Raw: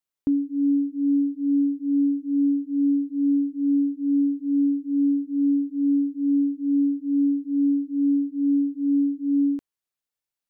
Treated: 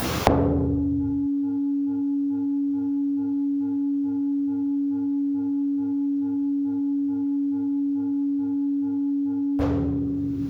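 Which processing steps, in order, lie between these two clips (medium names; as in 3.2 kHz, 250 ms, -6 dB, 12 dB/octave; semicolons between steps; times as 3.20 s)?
dynamic bell 170 Hz, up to +3 dB, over -28 dBFS, Q 0.97; reverberation RT60 1.0 s, pre-delay 3 ms, DRR -20 dB; upward compressor, threshold -2 dBFS; spectrum-flattening compressor 10:1; trim -17.5 dB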